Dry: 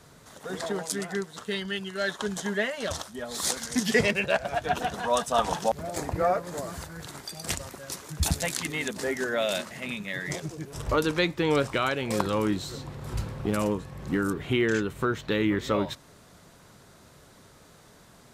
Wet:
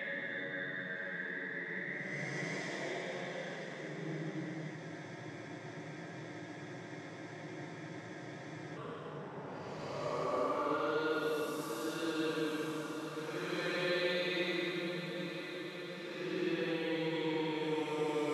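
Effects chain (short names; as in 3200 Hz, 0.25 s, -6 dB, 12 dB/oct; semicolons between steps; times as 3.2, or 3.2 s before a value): low-pass opened by the level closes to 740 Hz, open at -22 dBFS; HPF 180 Hz 24 dB/oct; compressor 2.5:1, threshold -34 dBFS, peak gain reduction 11.5 dB; Paulstretch 13×, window 0.10 s, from 10.13; diffused feedback echo 0.962 s, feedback 68%, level -9 dB; spectral freeze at 4.78, 3.99 s; gain -3.5 dB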